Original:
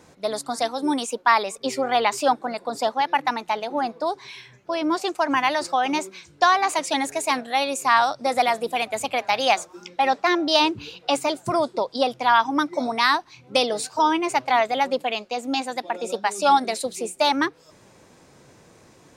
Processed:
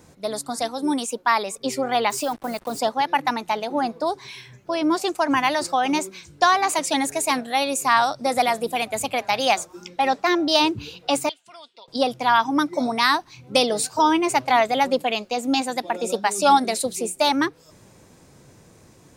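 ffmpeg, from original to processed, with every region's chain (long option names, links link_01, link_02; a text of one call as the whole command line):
ffmpeg -i in.wav -filter_complex "[0:a]asettb=1/sr,asplit=3[link_01][link_02][link_03];[link_01]atrim=end=2.104[link_04];[link_02]atrim=start=2.1:end=2.79,asetpts=PTS-STARTPTS,afade=type=in:duration=0.004:curve=qsin,afade=type=out:start_time=0.686:duration=0.004:curve=qsin,acompressor=threshold=-21dB:ratio=4:attack=3.2:release=140:knee=1:detection=peak,acrusher=bits=6:mix=0:aa=0.5[link_05];[link_03]atrim=start=2.786[link_06];[link_04][link_05]acrossfade=duration=0.004:curve1=hsin:curve2=qsin[link_07];[link_07][link_06]acrossfade=duration=0.004:curve1=qsin:curve2=hsin,asettb=1/sr,asplit=3[link_08][link_09][link_10];[link_08]atrim=end=11.294[link_11];[link_09]atrim=start=11.29:end=11.88,asetpts=PTS-STARTPTS,afade=type=in:duration=0.004:curve=qsin,afade=type=out:start_time=0.586:duration=0.004:curve=qsin,bandpass=frequency=3000:width_type=q:width=4.1,aecho=1:1:4.3:0.31,atrim=end_sample=26019[link_12];[link_10]atrim=start=11.876[link_13];[link_11][link_12]acrossfade=duration=0.004:curve1=hsin:curve2=qsin[link_14];[link_14][link_13]acrossfade=duration=0.004:curve1=qsin:curve2=hsin,highshelf=frequency=8300:gain=11,dynaudnorm=framelen=300:gausssize=17:maxgain=11.5dB,lowshelf=frequency=230:gain=9.5,volume=-3dB" out.wav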